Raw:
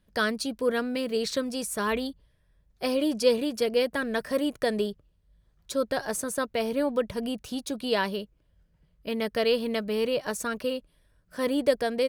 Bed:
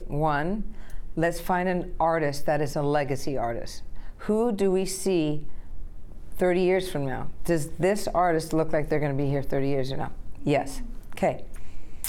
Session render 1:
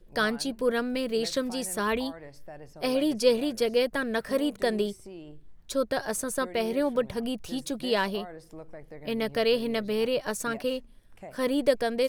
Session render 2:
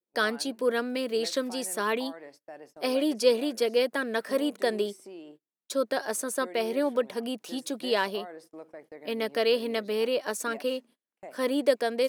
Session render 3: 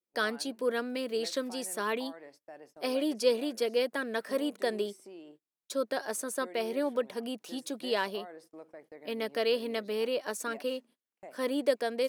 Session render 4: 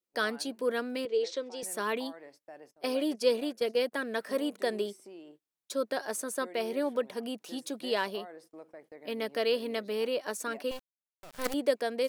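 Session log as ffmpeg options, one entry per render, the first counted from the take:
-filter_complex "[1:a]volume=-20dB[a];[0:a][a]amix=inputs=2:normalize=0"
-af "highpass=f=240:w=0.5412,highpass=f=240:w=1.3066,agate=range=-29dB:threshold=-51dB:ratio=16:detection=peak"
-af "volume=-4dB"
-filter_complex "[0:a]asettb=1/sr,asplit=3[a][b][c];[a]atrim=end=1.054[d];[b]atrim=start=1.05:end=1.63,asetpts=PTS-STARTPTS,afade=t=in:d=0.004:c=qsin,afade=t=out:st=0.576:d=0.004:c=qsin,highpass=430,equalizer=f=450:t=q:w=4:g=8,equalizer=f=660:t=q:w=4:g=-8,equalizer=f=1.2k:t=q:w=4:g=-9,equalizer=f=1.7k:t=q:w=4:g=-8,equalizer=f=2.6k:t=q:w=4:g=-4,equalizer=f=4.5k:t=q:w=4:g=-6,lowpass=f=6k:w=0.5412,lowpass=f=6k:w=1.3066[e];[c]atrim=start=1.626[f];[d][e]acrossfade=d=0.004:c1=hsin:c2=qsin[g];[g][f]acrossfade=d=0.004:c1=qsin:c2=hsin,asettb=1/sr,asplit=3[h][i][j];[h]atrim=end=2.714[k];[i]atrim=start=2.71:end=3.92,asetpts=PTS-STARTPTS,afade=t=in:d=0.004:c=qsin,afade=t=out:st=1.206:d=0.004:c=qsin,agate=range=-12dB:threshold=-38dB:ratio=16:release=100:detection=peak[l];[j]atrim=start=3.916[m];[k][l]acrossfade=d=0.004:c1=hsin:c2=qsin[n];[n][m]acrossfade=d=0.004:c1=qsin:c2=hsin,asettb=1/sr,asplit=3[o][p][q];[o]atrim=end=10.714[r];[p]atrim=start=10.71:end=11.54,asetpts=PTS-STARTPTS,afade=t=in:d=0.004:c=qsin,afade=t=out:st=0.826:d=0.004:c=qsin,acrusher=bits=5:dc=4:mix=0:aa=0.000001[s];[q]atrim=start=11.536[t];[r][s]acrossfade=d=0.004:c1=hsin:c2=qsin[u];[u][t]acrossfade=d=0.004:c1=qsin:c2=hsin"

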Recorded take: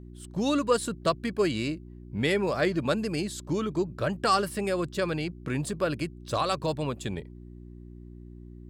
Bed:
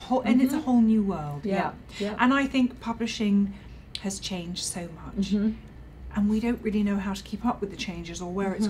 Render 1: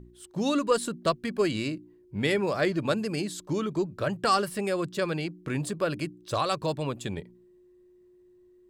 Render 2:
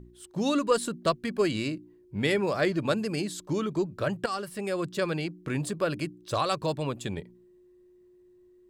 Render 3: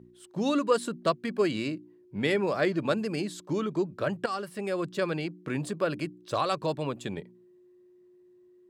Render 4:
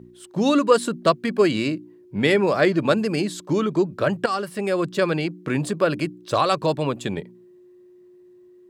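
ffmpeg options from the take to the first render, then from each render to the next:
-af "bandreject=f=60:t=h:w=4,bandreject=f=120:t=h:w=4,bandreject=f=180:t=h:w=4,bandreject=f=240:t=h:w=4,bandreject=f=300:t=h:w=4"
-filter_complex "[0:a]asplit=2[a][b];[a]atrim=end=4.26,asetpts=PTS-STARTPTS,afade=t=out:st=4.256:d=0.004:c=hsin:silence=0.251189[c];[b]atrim=start=4.26,asetpts=PTS-STARTPTS,afade=t=in:d=0.64:silence=0.251189[d];[c][d]concat=n=2:v=0:a=1"
-af "highpass=140,highshelf=f=5k:g=-7"
-af "volume=8dB"

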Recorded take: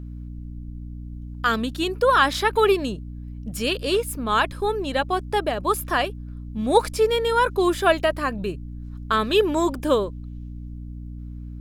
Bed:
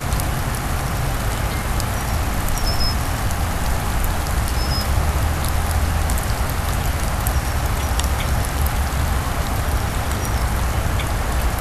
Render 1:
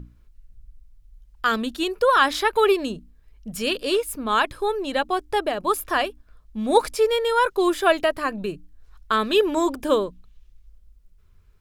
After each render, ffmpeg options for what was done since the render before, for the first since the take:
-af "bandreject=f=60:t=h:w=6,bandreject=f=120:t=h:w=6,bandreject=f=180:t=h:w=6,bandreject=f=240:t=h:w=6,bandreject=f=300:t=h:w=6"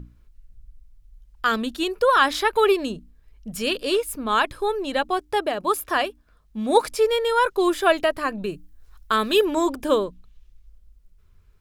-filter_complex "[0:a]asettb=1/sr,asplit=3[a][b][c];[a]atrim=end=5.184[d];[b]atrim=start=5.18:end=6.91,asetpts=PTS-STARTPTS,afade=t=in:d=0.004:c=qsin,afade=t=out:st=1.726:d=0.004:c=qsin,highpass=f=71:p=1[e];[c]atrim=start=6.906[f];[d][e]acrossfade=d=0.004:c1=hsin:c2=qsin[g];[g][f]acrossfade=d=0.004:c1=qsin:c2=hsin,asettb=1/sr,asplit=3[h][i][j];[h]atrim=end=8.524[k];[i]atrim=start=8.52:end=9.45,asetpts=PTS-STARTPTS,afade=t=in:d=0.004:c=qsin,afade=t=out:st=0.926:d=0.004:c=qsin,highshelf=f=8.2k:g=9.5[l];[j]atrim=start=9.446[m];[k][l]acrossfade=d=0.004:c1=hsin:c2=qsin[n];[n][m]acrossfade=d=0.004:c1=qsin:c2=hsin"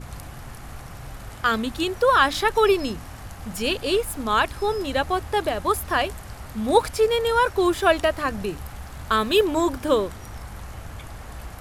-filter_complex "[1:a]volume=-17dB[a];[0:a][a]amix=inputs=2:normalize=0"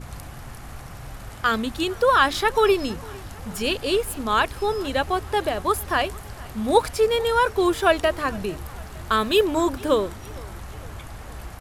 -af "aecho=1:1:455|910|1365|1820:0.0668|0.0368|0.0202|0.0111"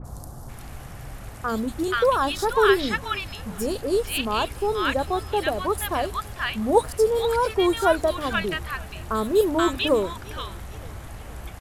-filter_complex "[0:a]acrossover=split=1200|4700[a][b][c];[c]adelay=40[d];[b]adelay=480[e];[a][e][d]amix=inputs=3:normalize=0"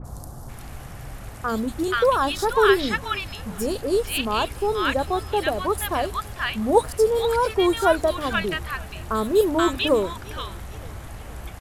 -af "volume=1dB"

